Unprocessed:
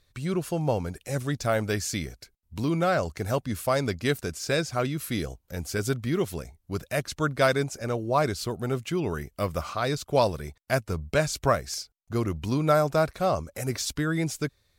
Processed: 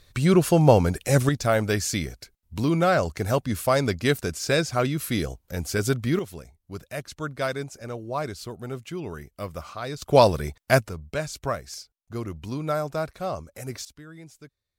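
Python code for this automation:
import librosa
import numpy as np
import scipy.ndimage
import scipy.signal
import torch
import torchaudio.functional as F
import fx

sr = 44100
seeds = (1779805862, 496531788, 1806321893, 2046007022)

y = fx.gain(x, sr, db=fx.steps((0.0, 10.0), (1.29, 3.5), (6.19, -5.5), (10.02, 6.5), (10.89, -5.0), (13.85, -17.5)))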